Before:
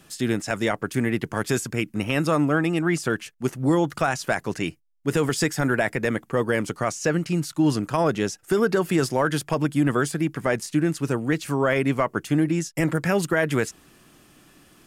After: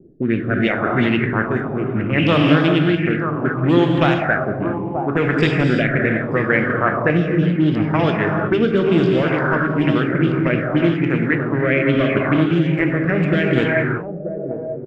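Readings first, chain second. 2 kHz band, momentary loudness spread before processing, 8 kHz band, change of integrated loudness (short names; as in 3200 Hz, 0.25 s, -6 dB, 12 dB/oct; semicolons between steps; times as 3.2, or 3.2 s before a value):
+7.5 dB, 5 LU, under -20 dB, +6.0 dB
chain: Wiener smoothing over 41 samples; in parallel at +0.5 dB: limiter -21 dBFS, peak gain reduction 10.5 dB; on the sum: non-linear reverb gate 0.42 s flat, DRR 0.5 dB; rotary speaker horn 0.7 Hz; on a send: echo 0.931 s -12.5 dB; on the sum: envelope low-pass 380–3300 Hz up, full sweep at -14 dBFS; gain +1.5 dB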